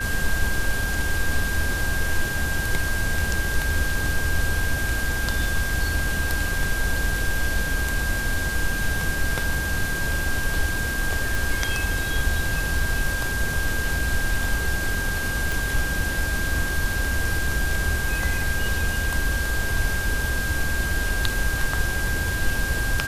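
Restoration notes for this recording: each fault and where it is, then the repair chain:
whine 1.6 kHz -27 dBFS
11.35 s: pop
15.52 s: pop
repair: de-click; band-stop 1.6 kHz, Q 30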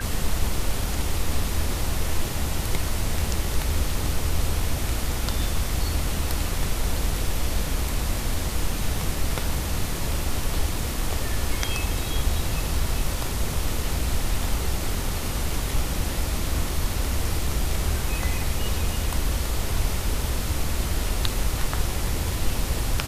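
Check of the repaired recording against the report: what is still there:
nothing left

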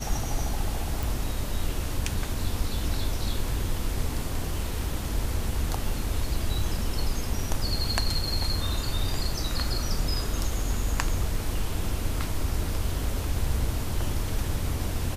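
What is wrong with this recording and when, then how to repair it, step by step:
1.03 s: pop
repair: de-click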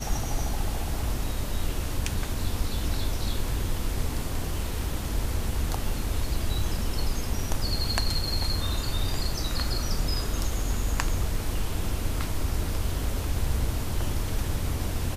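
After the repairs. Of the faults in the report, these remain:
nothing left

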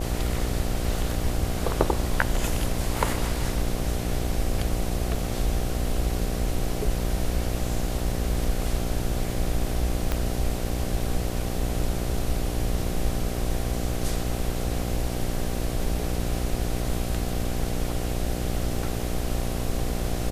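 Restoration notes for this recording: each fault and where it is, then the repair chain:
buzz 60 Hz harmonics 13 -30 dBFS
10.12 s: pop -11 dBFS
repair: de-click; de-hum 60 Hz, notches 13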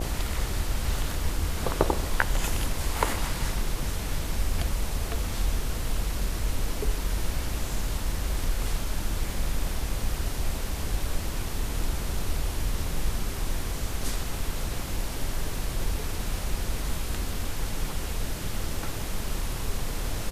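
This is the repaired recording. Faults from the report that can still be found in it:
10.12 s: pop

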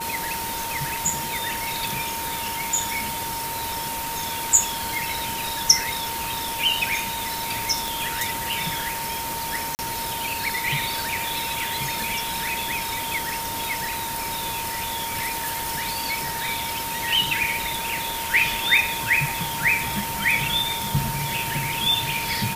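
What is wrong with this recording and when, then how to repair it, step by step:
whine 920 Hz -30 dBFS
7.88 s: pop
9.75–9.79 s: dropout 39 ms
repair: de-click; band-stop 920 Hz, Q 30; interpolate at 9.75 s, 39 ms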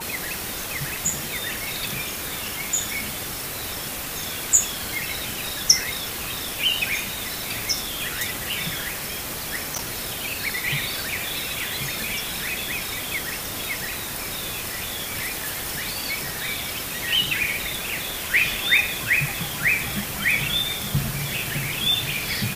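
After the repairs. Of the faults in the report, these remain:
nothing left

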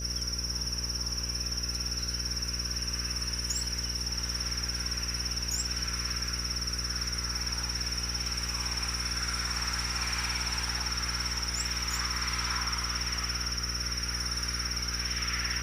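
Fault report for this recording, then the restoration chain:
buzz 60 Hz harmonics 10 -37 dBFS
whine 5.8 kHz -39 dBFS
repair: band-stop 5.8 kHz, Q 30; de-hum 60 Hz, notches 10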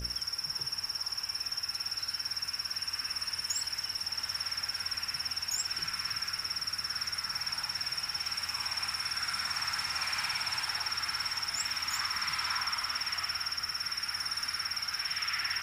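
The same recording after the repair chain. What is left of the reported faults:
nothing left

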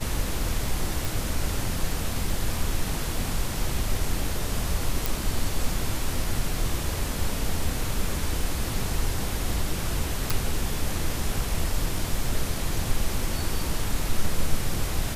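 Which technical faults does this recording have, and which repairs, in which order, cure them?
1.05 s: pop
5.06 s: pop
10.30 s: pop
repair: de-click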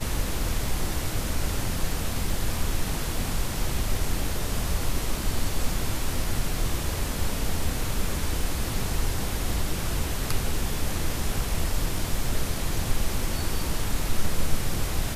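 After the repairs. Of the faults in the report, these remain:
nothing left

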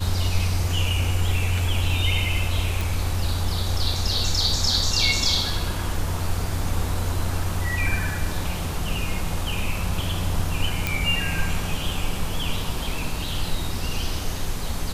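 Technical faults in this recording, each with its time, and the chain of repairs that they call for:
2.81 s: pop
10.87 s: pop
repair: de-click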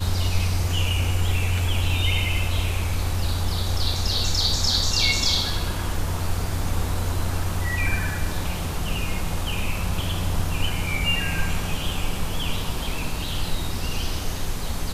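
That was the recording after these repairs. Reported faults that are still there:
nothing left

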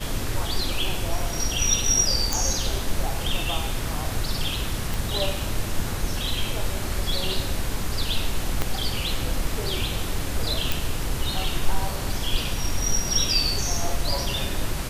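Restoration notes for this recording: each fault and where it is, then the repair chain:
2.33 s: pop
4.94 s: pop
8.62 s: pop -9 dBFS
10.72 s: pop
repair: de-click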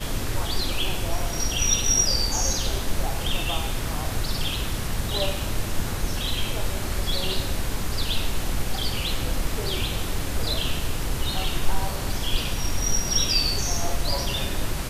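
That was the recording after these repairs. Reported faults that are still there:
8.62 s: pop

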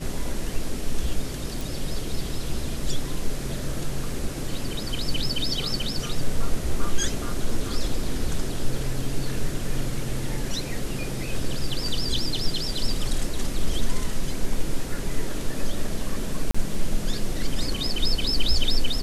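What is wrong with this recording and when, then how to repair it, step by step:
1.61 s: pop
16.51–16.55 s: dropout 35 ms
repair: de-click; interpolate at 16.51 s, 35 ms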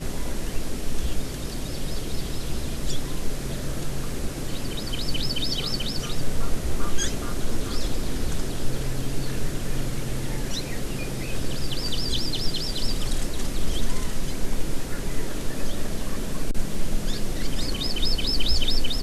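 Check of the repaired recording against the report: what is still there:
nothing left

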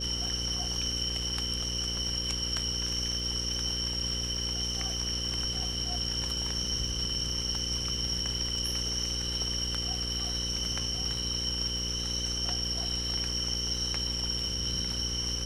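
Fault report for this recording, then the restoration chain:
buzz 60 Hz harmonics 9 -37 dBFS
crackle 27 per s -39 dBFS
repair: de-click; de-hum 60 Hz, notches 9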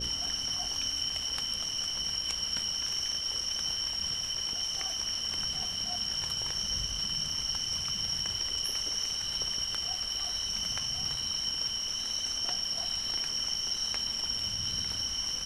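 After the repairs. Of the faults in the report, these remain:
nothing left

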